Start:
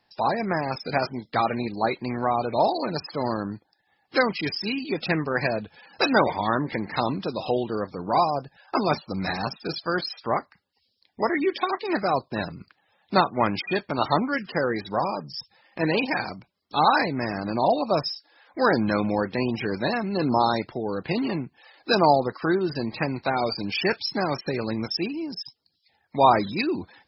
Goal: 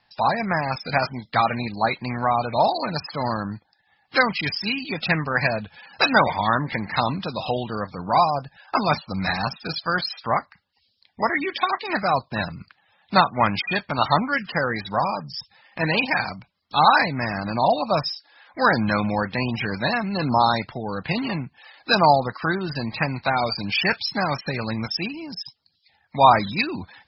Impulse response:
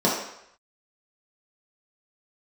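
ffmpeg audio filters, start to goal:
-af "lowpass=f=4.9k:w=0.5412,lowpass=f=4.9k:w=1.3066,equalizer=f=370:t=o:w=1.2:g=-12,volume=6dB"

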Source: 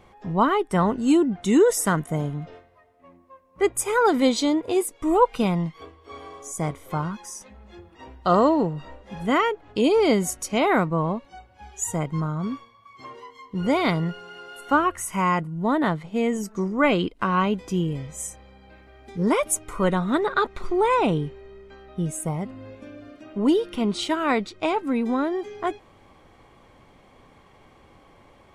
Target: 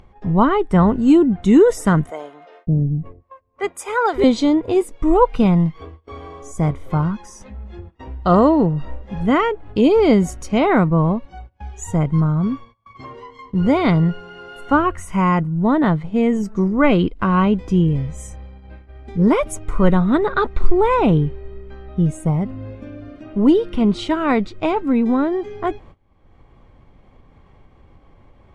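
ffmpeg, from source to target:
-filter_complex "[0:a]agate=range=-22dB:threshold=-48dB:ratio=16:detection=peak,aemphasis=mode=reproduction:type=bsi,acompressor=mode=upward:threshold=-36dB:ratio=2.5,asettb=1/sr,asplit=3[a][b][c];[a]atrim=end=2.104[d];[b]atrim=start=2.1:end=4.24,asetpts=PTS-STARTPTS,afade=t=in:d=0.004:c=qsin,afade=t=out:st=2.136:d=0.004:c=qsin,acrossover=split=450[e][f];[e]adelay=570[g];[g][f]amix=inputs=2:normalize=0,atrim=end_sample=94374[h];[c]atrim=start=4.236[i];[d][h]acrossfade=d=0.004:c1=hsin:c2=qsin[j];[j][i]acrossfade=d=0.004:c1=qsin:c2=hsin,volume=3dB"

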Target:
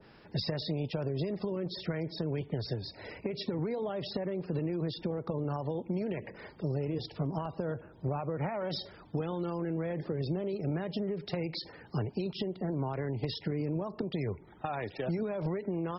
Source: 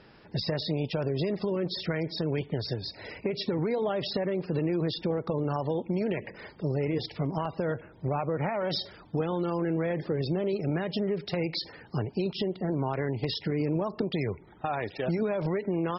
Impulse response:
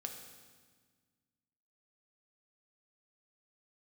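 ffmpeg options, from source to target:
-filter_complex "[0:a]asettb=1/sr,asplit=3[a][b][c];[a]atrim=end=6.784[d];[b]atrim=start=6.78:end=8.24,asetpts=PTS-STARTPTS,afade=t=in:d=0.004:c=qsin,afade=t=out:st=1.456:d=0.004:c=qsin,equalizer=f=2.1k:t=o:w=0.31:g=-9.5[e];[c]atrim=start=8.236[f];[d][e]acrossfade=d=0.004:c1=hsin:c2=qsin[g];[g][f]acrossfade=d=0.004:c1=qsin:c2=hsin,acrossover=split=150|3000[h][i][j];[i]acompressor=threshold=-30dB:ratio=6[k];[h][k][j]amix=inputs=3:normalize=0,adynamicequalizer=threshold=0.00355:dfrequency=1600:dqfactor=0.7:tfrequency=1600:tqfactor=0.7:attack=5:release=100:ratio=0.375:range=3:mode=cutabove:tftype=highshelf,volume=-1.5dB"

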